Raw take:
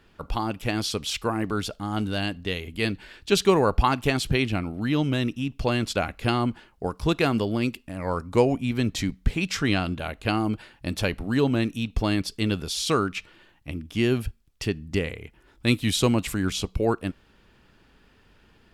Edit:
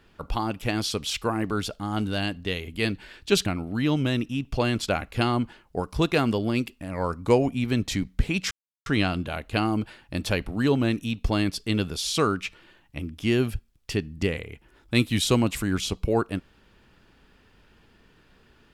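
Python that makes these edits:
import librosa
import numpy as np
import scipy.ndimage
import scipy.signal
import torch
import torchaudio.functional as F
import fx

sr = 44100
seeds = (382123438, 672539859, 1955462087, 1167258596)

y = fx.edit(x, sr, fx.cut(start_s=3.46, length_s=1.07),
    fx.insert_silence(at_s=9.58, length_s=0.35), tone=tone)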